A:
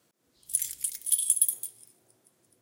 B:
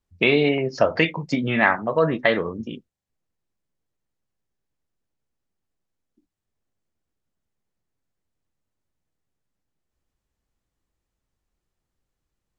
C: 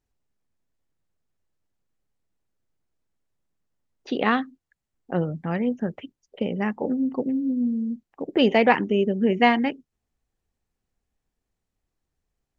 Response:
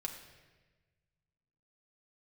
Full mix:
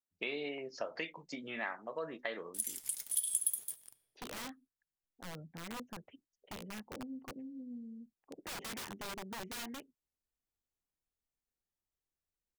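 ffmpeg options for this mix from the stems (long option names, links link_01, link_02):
-filter_complex "[0:a]agate=range=-33dB:threshold=-53dB:ratio=3:detection=peak,aeval=exprs='val(0)*gte(abs(val(0)),0.00501)':channel_layout=same,adelay=2050,volume=-2dB,asplit=2[link_01][link_02];[link_02]volume=-8dB[link_03];[1:a]highpass=290,crystalizer=i=1.5:c=0,volume=-17.5dB,asplit=2[link_04][link_05];[2:a]bandreject=frequency=1200:width=17,adynamicequalizer=threshold=0.0282:dfrequency=260:dqfactor=1.9:tfrequency=260:tqfactor=1.9:attack=5:release=100:ratio=0.375:range=2:mode=cutabove:tftype=bell,aeval=exprs='(mod(8.91*val(0)+1,2)-1)/8.91':channel_layout=same,adelay=100,volume=-19dB[link_06];[link_05]apad=whole_len=205808[link_07];[link_01][link_07]sidechaincompress=threshold=-39dB:ratio=8:attack=16:release=1240[link_08];[3:a]atrim=start_sample=2205[link_09];[link_03][link_09]afir=irnorm=-1:irlink=0[link_10];[link_08][link_04][link_06][link_10]amix=inputs=4:normalize=0,acompressor=threshold=-37dB:ratio=2"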